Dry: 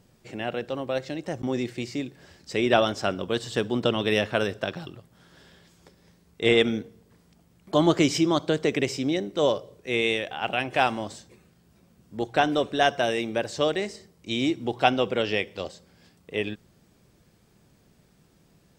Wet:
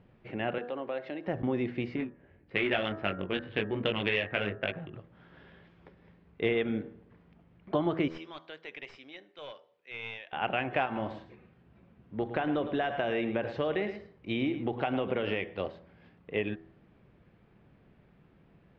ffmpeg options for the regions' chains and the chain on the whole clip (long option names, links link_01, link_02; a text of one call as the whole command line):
ffmpeg -i in.wav -filter_complex "[0:a]asettb=1/sr,asplit=3[link_01][link_02][link_03];[link_01]atrim=end=0.584[link_04];[link_02]atrim=start=0.58:end=1.27,asetpts=PTS-STARTPTS,afade=type=in:duration=0.004:curve=qsin,afade=type=out:start_time=0.686:duration=0.004:curve=qsin,highpass=280,acompressor=threshold=-34dB:ratio=2:attack=3.2:release=140:knee=1:detection=peak[link_05];[link_03]atrim=start=1.266[link_06];[link_04][link_05]acrossfade=duration=0.004:curve1=hsin:curve2=qsin[link_07];[link_07][link_06]acrossfade=duration=0.004:curve1=qsin:curve2=hsin,asettb=1/sr,asplit=3[link_08][link_09][link_10];[link_08]atrim=end=1.964[link_11];[link_09]atrim=start=1.96:end=4.93,asetpts=PTS-STARTPTS,afade=type=in:duration=0.004:curve=qsin,afade=type=out:start_time=2.966:duration=0.004:curve=qsin,highshelf=frequency=1600:width_type=q:width=1.5:gain=8.5,flanger=delay=18.5:depth=2.3:speed=1.1,adynamicsmooth=sensitivity=2:basefreq=750[link_12];[link_10]atrim=start=4.926[link_13];[link_11][link_12]acrossfade=duration=0.004:curve1=hsin:curve2=qsin[link_14];[link_14][link_13]acrossfade=duration=0.004:curve1=qsin:curve2=hsin,asettb=1/sr,asplit=3[link_15][link_16][link_17];[link_15]atrim=end=8.084[link_18];[link_16]atrim=start=8.08:end=10.33,asetpts=PTS-STARTPTS,afade=type=in:duration=0.004:curve=qsin,afade=type=out:start_time=2.246:duration=0.004:curve=qsin,aderivative,aeval=exprs='clip(val(0),-1,0.0188)':channel_layout=same[link_19];[link_17]atrim=start=10.326[link_20];[link_18][link_19]acrossfade=duration=0.004:curve1=hsin:curve2=qsin[link_21];[link_21][link_20]acrossfade=duration=0.004:curve1=qsin:curve2=hsin,asettb=1/sr,asplit=3[link_22][link_23][link_24];[link_22]atrim=end=10.854[link_25];[link_23]atrim=start=10.85:end=15.44,asetpts=PTS-STARTPTS,afade=type=in:duration=0.004:curve=qsin,afade=type=out:start_time=4.586:duration=0.004:curve=qsin,acompressor=threshold=-23dB:ratio=6:attack=3.2:release=140:knee=1:detection=peak,aecho=1:1:108:0.251,atrim=end_sample=202419[link_26];[link_24]atrim=start=15.436[link_27];[link_25][link_26]acrossfade=duration=0.004:curve1=hsin:curve2=qsin[link_28];[link_28][link_27]acrossfade=duration=0.004:curve1=qsin:curve2=hsin,lowpass=frequency=2700:width=0.5412,lowpass=frequency=2700:width=1.3066,bandreject=frequency=81.16:width_type=h:width=4,bandreject=frequency=162.32:width_type=h:width=4,bandreject=frequency=243.48:width_type=h:width=4,bandreject=frequency=324.64:width_type=h:width=4,bandreject=frequency=405.8:width_type=h:width=4,bandreject=frequency=486.96:width_type=h:width=4,bandreject=frequency=568.12:width_type=h:width=4,bandreject=frequency=649.28:width_type=h:width=4,bandreject=frequency=730.44:width_type=h:width=4,bandreject=frequency=811.6:width_type=h:width=4,bandreject=frequency=892.76:width_type=h:width=4,bandreject=frequency=973.92:width_type=h:width=4,bandreject=frequency=1055.08:width_type=h:width=4,bandreject=frequency=1136.24:width_type=h:width=4,bandreject=frequency=1217.4:width_type=h:width=4,bandreject=frequency=1298.56:width_type=h:width=4,bandreject=frequency=1379.72:width_type=h:width=4,bandreject=frequency=1460.88:width_type=h:width=4,bandreject=frequency=1542.04:width_type=h:width=4,bandreject=frequency=1623.2:width_type=h:width=4,bandreject=frequency=1704.36:width_type=h:width=4,bandreject=frequency=1785.52:width_type=h:width=4,bandreject=frequency=1866.68:width_type=h:width=4,acompressor=threshold=-25dB:ratio=6" out.wav